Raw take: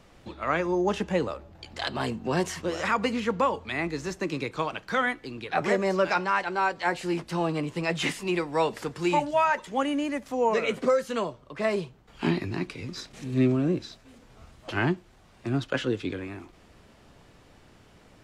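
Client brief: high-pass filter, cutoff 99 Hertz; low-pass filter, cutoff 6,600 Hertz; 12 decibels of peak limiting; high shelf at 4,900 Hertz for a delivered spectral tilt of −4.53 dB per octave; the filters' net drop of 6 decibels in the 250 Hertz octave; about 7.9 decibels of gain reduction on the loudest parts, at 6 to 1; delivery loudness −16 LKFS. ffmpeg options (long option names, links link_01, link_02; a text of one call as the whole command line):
ffmpeg -i in.wav -af "highpass=99,lowpass=6600,equalizer=frequency=250:width_type=o:gain=-8.5,highshelf=frequency=4900:gain=4.5,acompressor=threshold=-28dB:ratio=6,volume=22dB,alimiter=limit=-5.5dB:level=0:latency=1" out.wav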